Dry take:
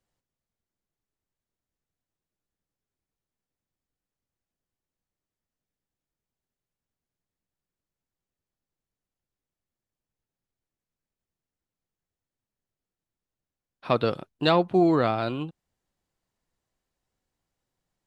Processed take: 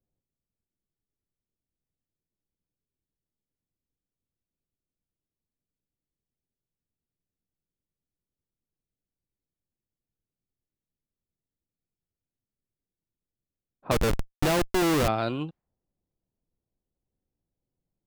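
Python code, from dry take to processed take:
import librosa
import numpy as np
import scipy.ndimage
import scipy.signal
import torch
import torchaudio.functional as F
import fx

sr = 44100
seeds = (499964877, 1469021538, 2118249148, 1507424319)

y = fx.env_lowpass(x, sr, base_hz=450.0, full_db=-25.0)
y = fx.schmitt(y, sr, flips_db=-25.0, at=(13.91, 15.08))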